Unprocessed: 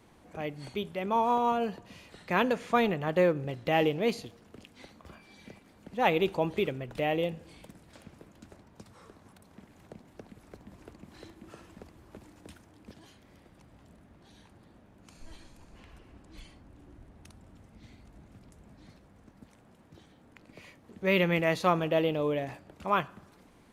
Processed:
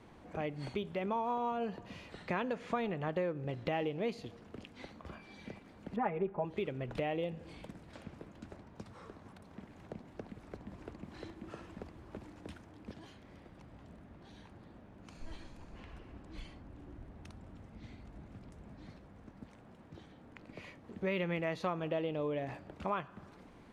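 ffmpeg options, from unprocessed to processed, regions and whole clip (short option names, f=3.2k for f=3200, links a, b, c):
-filter_complex "[0:a]asettb=1/sr,asplit=3[a][b][c];[a]atrim=end=5.964[d];[b]atrim=start=5.96:end=6.45,asetpts=PTS-STARTPTS,afade=t=in:d=0.004:c=qsin,afade=t=out:st=0.486:d=0.004:c=qsin,lowpass=f=1.9k:w=0.5412,lowpass=f=1.9k:w=1.3066,aecho=1:1:4.9:0.9,atrim=end_sample=21609[e];[c]atrim=start=6.446[f];[d][e]acrossfade=d=0.004:c1=hsin:c2=qsin[g];[g][f]acrossfade=d=0.004:c1=qsin:c2=hsin,aemphasis=mode=reproduction:type=50fm,acompressor=threshold=-36dB:ratio=4,volume=2dB"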